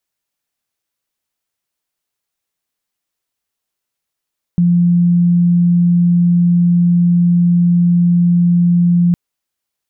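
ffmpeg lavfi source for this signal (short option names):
-f lavfi -i "sine=f=174:d=4.56:r=44100,volume=10.06dB"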